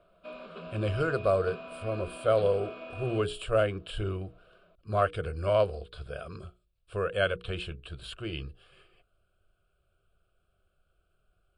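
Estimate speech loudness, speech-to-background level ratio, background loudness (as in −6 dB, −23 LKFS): −31.0 LKFS, 12.5 dB, −43.5 LKFS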